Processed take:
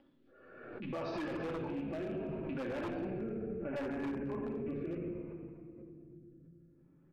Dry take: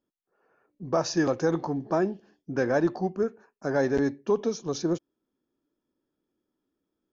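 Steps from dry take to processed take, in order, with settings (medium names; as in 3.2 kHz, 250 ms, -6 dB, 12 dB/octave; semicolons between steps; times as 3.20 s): rattle on loud lows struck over -36 dBFS, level -31 dBFS; steep low-pass 4 kHz 36 dB/octave, from 3.02 s 2.4 kHz; simulated room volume 2200 m³, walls mixed, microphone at 2.4 m; upward compressor, threshold -38 dBFS; flange 0.43 Hz, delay 7.4 ms, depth 1.5 ms, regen -31%; frequency-shifting echo 87 ms, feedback 61%, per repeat -68 Hz, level -15 dB; wavefolder -19.5 dBFS; rotary cabinet horn 0.65 Hz; peak limiter -27.5 dBFS, peak gain reduction 10 dB; swell ahead of each attack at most 41 dB/s; trim -4.5 dB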